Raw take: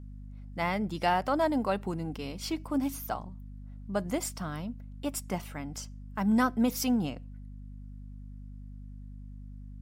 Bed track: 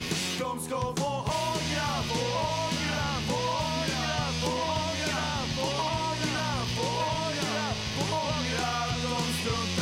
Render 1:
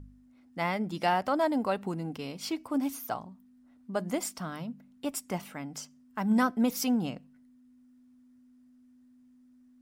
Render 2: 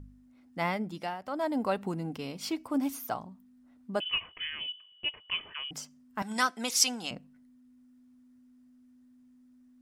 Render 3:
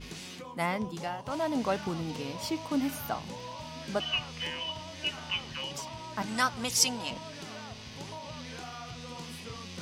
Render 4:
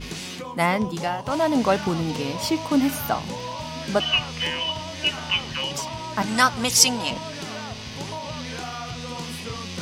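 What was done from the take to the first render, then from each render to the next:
de-hum 50 Hz, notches 4
0.68–1.68 s: dip -14 dB, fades 0.50 s; 4.00–5.71 s: frequency inversion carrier 3.2 kHz; 6.22–7.11 s: frequency weighting ITU-R 468
add bed track -13 dB
trim +9.5 dB; peak limiter -1 dBFS, peak gain reduction 1 dB

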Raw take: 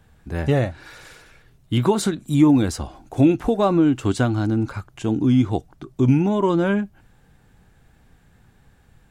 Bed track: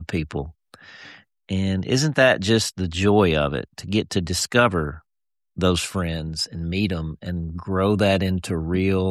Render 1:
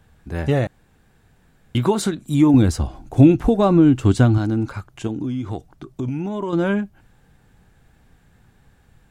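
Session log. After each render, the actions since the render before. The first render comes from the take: 0.67–1.75 s: room tone; 2.54–4.38 s: bass shelf 220 Hz +10 dB; 5.07–6.53 s: compression, threshold -22 dBFS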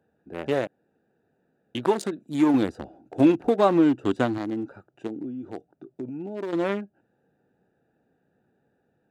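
local Wiener filter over 41 samples; high-pass 370 Hz 12 dB/octave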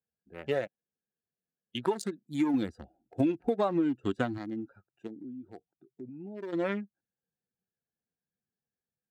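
expander on every frequency bin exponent 1.5; compression 6:1, threshold -24 dBFS, peak gain reduction 10 dB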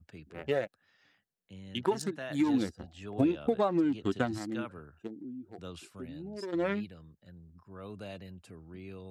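add bed track -25 dB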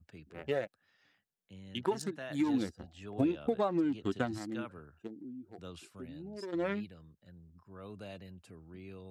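trim -3 dB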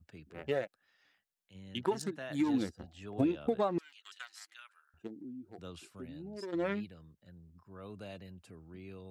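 0.62–1.54 s: peaking EQ 66 Hz -> 220 Hz -9.5 dB 2.9 oct; 3.78–4.94 s: Bessel high-pass 2.1 kHz, order 4

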